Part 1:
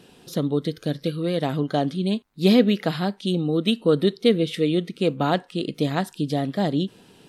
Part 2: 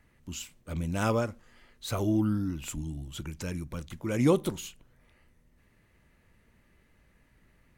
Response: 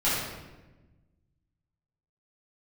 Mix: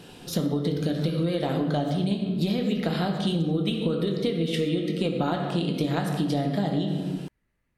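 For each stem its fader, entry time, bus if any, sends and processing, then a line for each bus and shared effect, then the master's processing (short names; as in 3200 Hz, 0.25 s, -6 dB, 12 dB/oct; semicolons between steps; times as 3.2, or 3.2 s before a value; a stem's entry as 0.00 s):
+2.5 dB, 0.00 s, send -13.5 dB, compressor, threshold -21 dBFS, peak gain reduction 10 dB
-12.0 dB, 0.00 s, no send, compressor, threshold -29 dBFS, peak gain reduction 11 dB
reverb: on, RT60 1.1 s, pre-delay 6 ms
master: compressor, threshold -22 dBFS, peak gain reduction 8.5 dB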